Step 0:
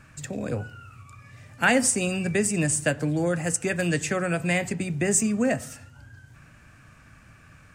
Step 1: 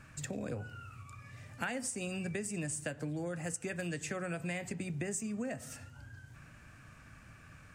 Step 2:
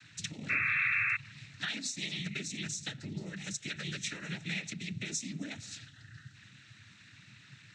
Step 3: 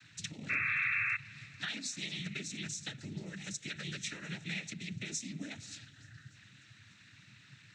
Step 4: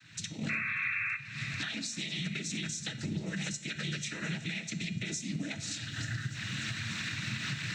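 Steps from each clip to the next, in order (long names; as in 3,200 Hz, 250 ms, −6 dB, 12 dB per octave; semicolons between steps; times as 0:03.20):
downward compressor 6 to 1, threshold −32 dBFS, peak gain reduction 15.5 dB; level −3.5 dB
cochlear-implant simulation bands 12; sound drawn into the spectrogram noise, 0:00.49–0:01.17, 1,100–2,700 Hz −33 dBFS; graphic EQ with 10 bands 500 Hz −12 dB, 1,000 Hz −11 dB, 2,000 Hz +4 dB, 4,000 Hz +12 dB
feedback echo with a high-pass in the loop 293 ms, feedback 70%, high-pass 160 Hz, level −24 dB; level −2.5 dB
camcorder AGC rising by 56 dB per second; tuned comb filter 220 Hz, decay 0.56 s, harmonics odd, mix 70%; rectangular room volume 2,400 cubic metres, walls furnished, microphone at 0.63 metres; level +8.5 dB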